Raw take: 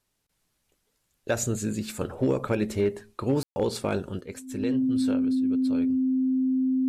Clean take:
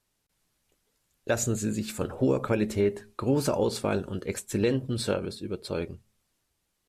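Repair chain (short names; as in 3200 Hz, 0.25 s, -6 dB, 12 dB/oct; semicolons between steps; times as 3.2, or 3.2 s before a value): clip repair -16.5 dBFS; notch 260 Hz, Q 30; room tone fill 3.43–3.56; gain correction +7 dB, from 4.21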